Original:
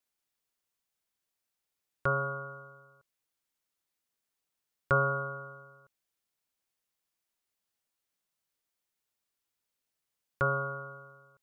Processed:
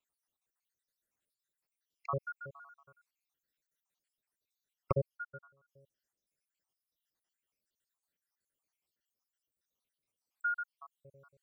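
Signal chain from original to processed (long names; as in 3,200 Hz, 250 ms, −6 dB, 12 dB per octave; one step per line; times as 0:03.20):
time-frequency cells dropped at random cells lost 74%
0:05.17–0:05.68: expander for the loud parts 2.5 to 1, over −52 dBFS
level +1 dB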